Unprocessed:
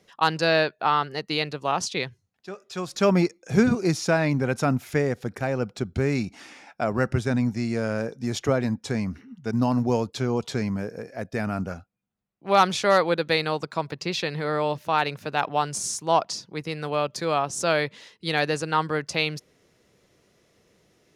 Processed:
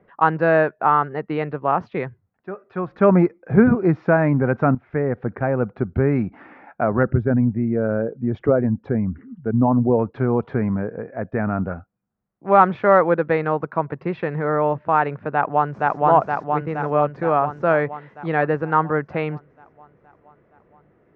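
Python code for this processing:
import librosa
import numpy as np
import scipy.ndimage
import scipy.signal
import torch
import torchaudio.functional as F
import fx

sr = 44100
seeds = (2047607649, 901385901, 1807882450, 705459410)

y = fx.envelope_sharpen(x, sr, power=1.5, at=(7.03, 9.99))
y = fx.echo_throw(y, sr, start_s=15.31, length_s=0.65, ms=470, feedback_pct=65, wet_db=0.0)
y = fx.edit(y, sr, fx.fade_in_from(start_s=4.75, length_s=0.47, floor_db=-13.5), tone=tone)
y = scipy.signal.sosfilt(scipy.signal.butter(4, 1700.0, 'lowpass', fs=sr, output='sos'), y)
y = y * 10.0 ** (5.5 / 20.0)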